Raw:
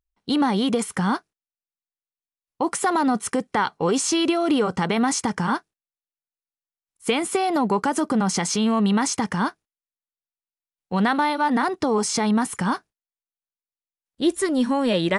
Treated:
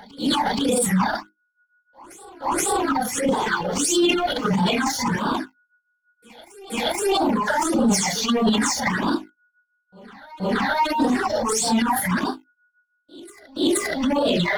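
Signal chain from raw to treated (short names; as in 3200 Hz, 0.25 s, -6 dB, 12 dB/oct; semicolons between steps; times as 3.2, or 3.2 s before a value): phase scrambler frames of 0.2 s; HPF 110 Hz 6 dB/oct; notches 50/100/150/200/250/300/350 Hz; gate with hold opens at -38 dBFS; reverb removal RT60 1.5 s; compressor 8:1, threshold -27 dBFS, peak gain reduction 11.5 dB; transient shaper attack -5 dB, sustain +11 dB; whine 1400 Hz -61 dBFS; sample leveller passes 2; phaser stages 8, 1.5 Hz, lowest notch 310–2000 Hz; on a send: reverse echo 0.495 s -21.5 dB; on the sum: speed mistake 24 fps film run at 25 fps; gain +5.5 dB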